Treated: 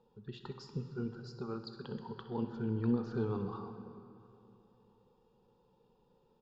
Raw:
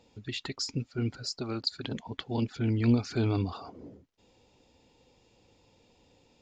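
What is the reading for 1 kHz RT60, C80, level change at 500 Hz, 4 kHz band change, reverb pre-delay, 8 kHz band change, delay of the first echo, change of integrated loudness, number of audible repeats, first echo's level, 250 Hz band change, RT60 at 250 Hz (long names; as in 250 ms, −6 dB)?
2.9 s, 9.0 dB, −3.5 dB, −18.5 dB, 4 ms, below −20 dB, 64 ms, −7.5 dB, 1, −15.5 dB, −6.0 dB, 3.0 s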